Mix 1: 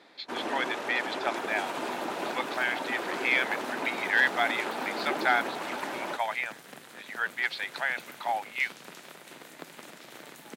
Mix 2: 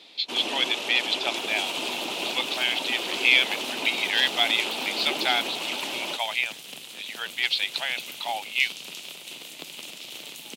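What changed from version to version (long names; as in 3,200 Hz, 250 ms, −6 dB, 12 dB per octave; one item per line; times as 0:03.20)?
master: add high shelf with overshoot 2,200 Hz +9 dB, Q 3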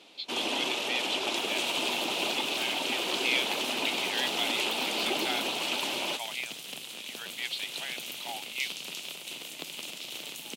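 speech −10.5 dB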